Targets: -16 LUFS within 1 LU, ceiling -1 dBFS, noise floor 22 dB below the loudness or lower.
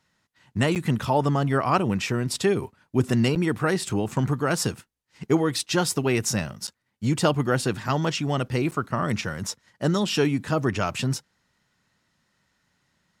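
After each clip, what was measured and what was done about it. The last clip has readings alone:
dropouts 4; longest dropout 8.5 ms; loudness -25.0 LUFS; peak level -8.0 dBFS; loudness target -16.0 LUFS
-> interpolate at 0.75/3.35/6.67/8.71 s, 8.5 ms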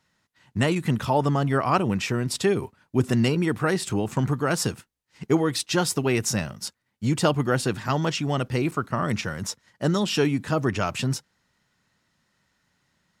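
dropouts 0; loudness -25.0 LUFS; peak level -8.0 dBFS; loudness target -16.0 LUFS
-> trim +9 dB; peak limiter -1 dBFS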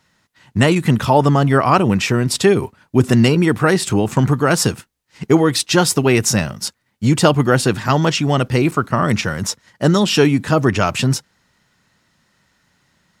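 loudness -16.0 LUFS; peak level -1.0 dBFS; noise floor -65 dBFS

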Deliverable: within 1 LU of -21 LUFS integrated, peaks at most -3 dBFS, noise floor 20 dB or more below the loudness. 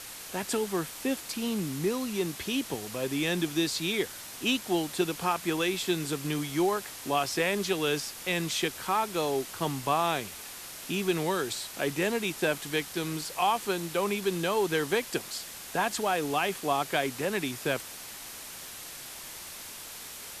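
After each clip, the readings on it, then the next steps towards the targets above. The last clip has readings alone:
noise floor -43 dBFS; noise floor target -51 dBFS; loudness -30.5 LUFS; peak level -13.0 dBFS; loudness target -21.0 LUFS
-> noise reduction 8 dB, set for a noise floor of -43 dBFS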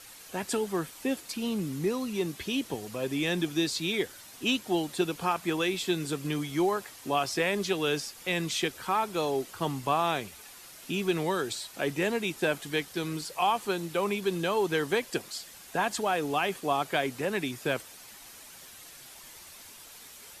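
noise floor -49 dBFS; noise floor target -50 dBFS
-> noise reduction 6 dB, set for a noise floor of -49 dBFS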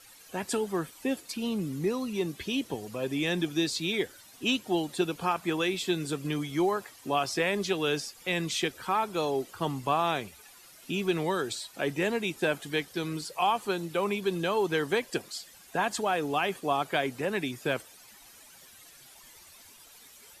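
noise floor -54 dBFS; loudness -30.5 LUFS; peak level -13.5 dBFS; loudness target -21.0 LUFS
-> trim +9.5 dB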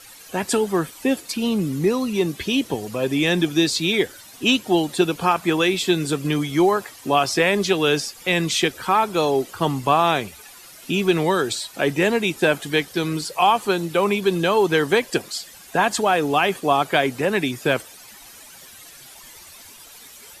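loudness -21.0 LUFS; peak level -4.0 dBFS; noise floor -44 dBFS

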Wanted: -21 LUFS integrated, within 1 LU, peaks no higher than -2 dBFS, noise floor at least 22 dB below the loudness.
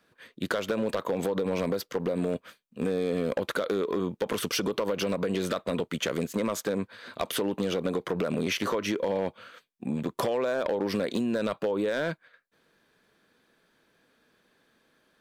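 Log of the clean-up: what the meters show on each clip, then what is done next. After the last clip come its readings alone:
clipped samples 1.0%; clipping level -20.5 dBFS; loudness -30.0 LUFS; peak level -20.5 dBFS; loudness target -21.0 LUFS
-> clip repair -20.5 dBFS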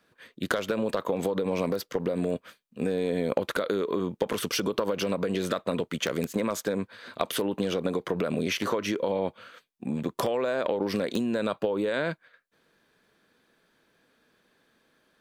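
clipped samples 0.0%; loudness -29.5 LUFS; peak level -11.5 dBFS; loudness target -21.0 LUFS
-> trim +8.5 dB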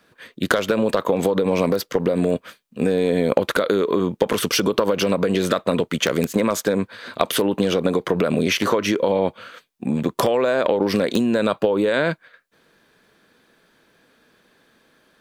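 loudness -21.0 LUFS; peak level -3.0 dBFS; noise floor -62 dBFS

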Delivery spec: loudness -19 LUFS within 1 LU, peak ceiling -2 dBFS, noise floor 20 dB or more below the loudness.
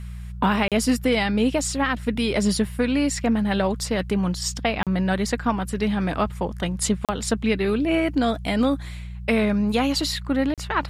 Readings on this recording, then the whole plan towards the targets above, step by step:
dropouts 4; longest dropout 37 ms; hum 60 Hz; highest harmonic 180 Hz; hum level -31 dBFS; loudness -23.0 LUFS; peak level -10.0 dBFS; loudness target -19.0 LUFS
-> interpolate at 0.68/4.83/7.05/10.54 s, 37 ms; de-hum 60 Hz, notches 3; trim +4 dB

